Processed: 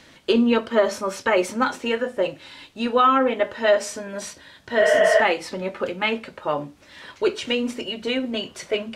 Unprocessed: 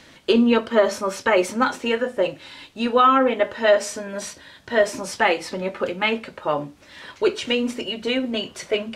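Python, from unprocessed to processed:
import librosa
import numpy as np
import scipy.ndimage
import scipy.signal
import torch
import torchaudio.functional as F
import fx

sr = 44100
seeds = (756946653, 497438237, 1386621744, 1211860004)

y = fx.spec_repair(x, sr, seeds[0], start_s=4.83, length_s=0.35, low_hz=450.0, high_hz=3500.0, source='before')
y = y * 10.0 ** (-1.5 / 20.0)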